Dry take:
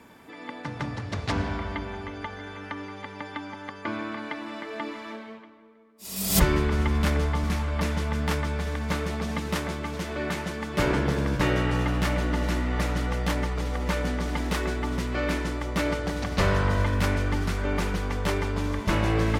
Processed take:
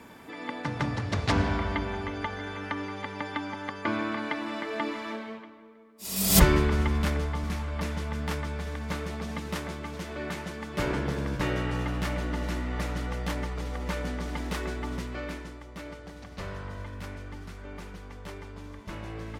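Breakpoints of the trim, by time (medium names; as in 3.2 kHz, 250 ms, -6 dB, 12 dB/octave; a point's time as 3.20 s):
6.37 s +2.5 dB
7.27 s -5 dB
14.95 s -5 dB
15.68 s -15 dB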